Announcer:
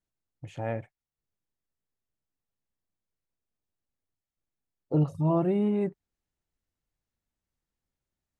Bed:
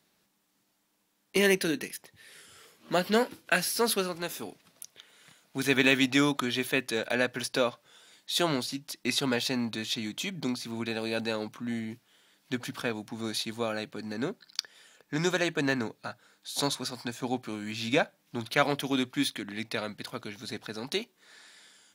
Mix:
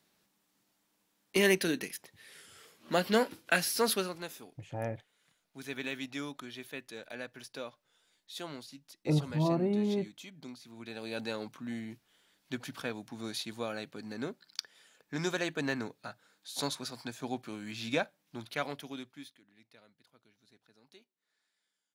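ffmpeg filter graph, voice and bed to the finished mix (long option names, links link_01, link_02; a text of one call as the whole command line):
ffmpeg -i stem1.wav -i stem2.wav -filter_complex "[0:a]adelay=4150,volume=-4dB[link_01];[1:a]volume=7.5dB,afade=type=out:start_time=3.88:duration=0.63:silence=0.223872,afade=type=in:start_time=10.75:duration=0.5:silence=0.334965,afade=type=out:start_time=17.98:duration=1.4:silence=0.0794328[link_02];[link_01][link_02]amix=inputs=2:normalize=0" out.wav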